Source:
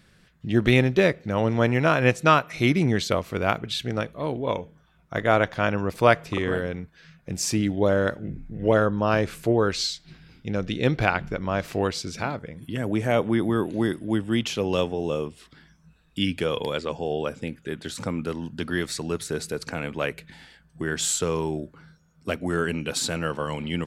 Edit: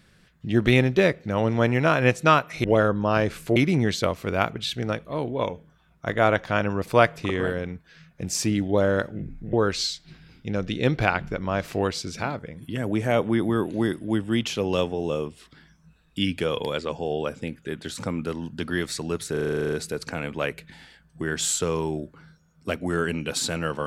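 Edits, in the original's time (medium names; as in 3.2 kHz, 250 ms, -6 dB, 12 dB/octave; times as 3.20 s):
8.61–9.53 s: move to 2.64 s
19.32 s: stutter 0.04 s, 11 plays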